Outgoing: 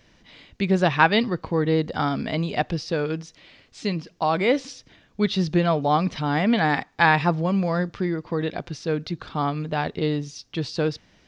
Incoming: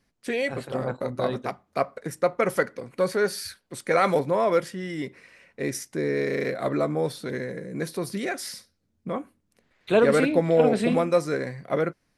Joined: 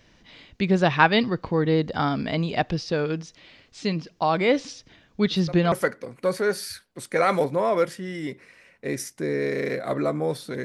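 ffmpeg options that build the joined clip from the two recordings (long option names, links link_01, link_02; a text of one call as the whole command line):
ffmpeg -i cue0.wav -i cue1.wav -filter_complex "[1:a]asplit=2[link_01][link_02];[0:a]apad=whole_dur=10.64,atrim=end=10.64,atrim=end=5.722[link_03];[link_02]atrim=start=2.468:end=7.39[link_04];[link_01]atrim=start=2.02:end=2.47,asetpts=PTS-STARTPTS,volume=-16dB,afade=type=in:duration=0.004:curve=hsin,afade=type=out:start_time=0.446:duration=0.004:curve=hsin,adelay=5270[link_05];[link_03][link_04]acrossfade=duration=0.004:curve1=hsin:curve2=hsin[link_06];[link_06][link_05]amix=inputs=2:normalize=0" out.wav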